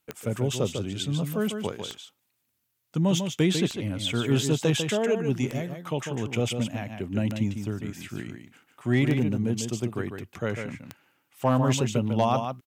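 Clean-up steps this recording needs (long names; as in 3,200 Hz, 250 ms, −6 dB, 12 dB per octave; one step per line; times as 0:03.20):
clipped peaks rebuilt −12.5 dBFS
click removal
echo removal 148 ms −7 dB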